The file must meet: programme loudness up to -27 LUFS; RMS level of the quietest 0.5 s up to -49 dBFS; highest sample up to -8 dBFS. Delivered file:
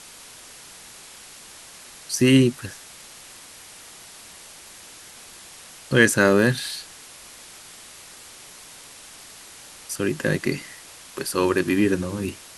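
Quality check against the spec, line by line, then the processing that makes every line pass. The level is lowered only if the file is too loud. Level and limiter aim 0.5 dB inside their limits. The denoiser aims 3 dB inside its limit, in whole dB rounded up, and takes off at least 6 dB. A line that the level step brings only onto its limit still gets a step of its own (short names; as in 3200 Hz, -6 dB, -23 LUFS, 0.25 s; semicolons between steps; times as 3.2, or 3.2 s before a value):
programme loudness -21.5 LUFS: fail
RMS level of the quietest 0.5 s -44 dBFS: fail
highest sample -2.5 dBFS: fail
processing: gain -6 dB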